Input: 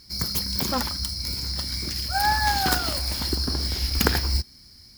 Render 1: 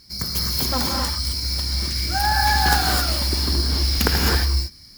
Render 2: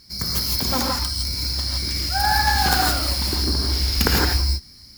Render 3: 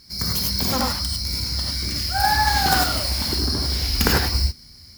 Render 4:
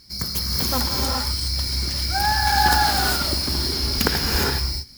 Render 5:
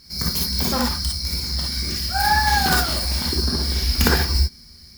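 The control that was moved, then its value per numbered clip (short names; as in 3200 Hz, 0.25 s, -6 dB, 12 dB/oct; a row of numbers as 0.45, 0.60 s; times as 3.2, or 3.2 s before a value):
non-linear reverb, gate: 290, 190, 120, 440, 80 ms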